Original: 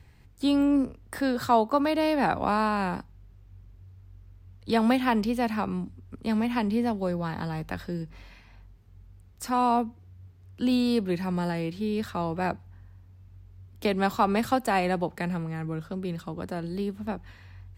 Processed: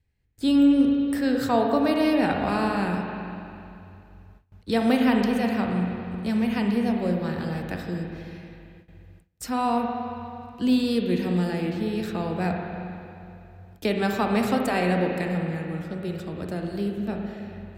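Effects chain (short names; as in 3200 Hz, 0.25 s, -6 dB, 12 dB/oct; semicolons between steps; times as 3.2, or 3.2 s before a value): spring tank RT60 2.7 s, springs 39/55 ms, chirp 60 ms, DRR 1.5 dB; gate with hold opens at -41 dBFS; bell 1000 Hz -8 dB 0.84 oct; gain +1.5 dB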